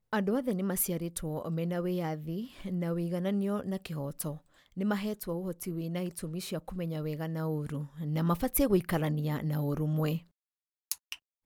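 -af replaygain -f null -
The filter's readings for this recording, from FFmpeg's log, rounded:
track_gain = +14.7 dB
track_peak = 0.202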